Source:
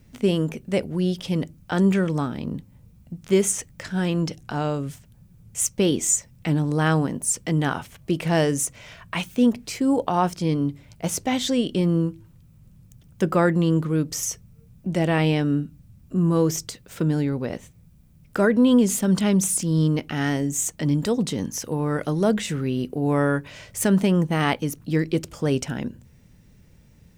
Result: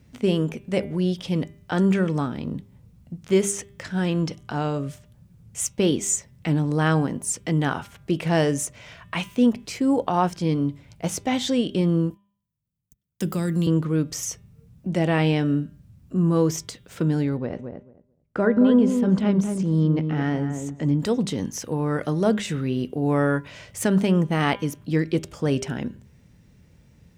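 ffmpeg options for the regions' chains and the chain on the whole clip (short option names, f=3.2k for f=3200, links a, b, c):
-filter_complex "[0:a]asettb=1/sr,asplit=3[a][b][c];[a]atrim=end=12.104[d];[b]atrim=start=12.1:end=13.67,asetpts=PTS-STARTPTS,afade=t=in:d=0.004:c=qsin,afade=t=out:st=1.566:d=0.004:c=qsin,aemphasis=mode=production:type=50fm,agate=range=-32dB:threshold=-41dB:ratio=16:release=100:detection=peak,acrossover=split=280|3000[e][f][g];[f]acompressor=threshold=-32dB:ratio=10:attack=3.2:release=140:knee=2.83:detection=peak[h];[e][h][g]amix=inputs=3:normalize=0[i];[c]atrim=start=13.666[j];[d][i]acrossfade=d=0.004:c1=hsin:c2=qsin[k];[k][j]acrossfade=d=0.004:c1=qsin:c2=hsin,asettb=1/sr,asplit=3[l][m][n];[l]atrim=end=17.374[o];[m]atrim=start=17.37:end=21,asetpts=PTS-STARTPTS,afade=t=in:d=0.004:c=qsin,afade=t=out:st=3.626:d=0.004:c=qsin,agate=range=-20dB:threshold=-41dB:ratio=16:release=100:detection=peak,lowpass=f=1.4k:p=1,asplit=2[p][q];[q]adelay=222,lowpass=f=1.1k:p=1,volume=-6dB,asplit=2[r][s];[s]adelay=222,lowpass=f=1.1k:p=1,volume=0.16,asplit=2[t][u];[u]adelay=222,lowpass=f=1.1k:p=1,volume=0.16[v];[p][r][t][v]amix=inputs=4:normalize=0,atrim=end_sample=160083[w];[n]atrim=start=20.996[x];[o][w]acrossfade=d=0.004:c1=hsin:c2=qsin[y];[y][x]acrossfade=d=0.004:c1=qsin:c2=hsin,highpass=44,highshelf=f=9k:g=-8,bandreject=f=199.9:t=h:w=4,bandreject=f=399.8:t=h:w=4,bandreject=f=599.7:t=h:w=4,bandreject=f=799.6:t=h:w=4,bandreject=f=999.5:t=h:w=4,bandreject=f=1.1994k:t=h:w=4,bandreject=f=1.3993k:t=h:w=4,bandreject=f=1.5992k:t=h:w=4,bandreject=f=1.7991k:t=h:w=4,bandreject=f=1.999k:t=h:w=4,bandreject=f=2.1989k:t=h:w=4,bandreject=f=2.3988k:t=h:w=4,bandreject=f=2.5987k:t=h:w=4,bandreject=f=2.7986k:t=h:w=4,bandreject=f=2.9985k:t=h:w=4,bandreject=f=3.1984k:t=h:w=4,bandreject=f=3.3983k:t=h:w=4,bandreject=f=3.5982k:t=h:w=4,bandreject=f=3.7981k:t=h:w=4"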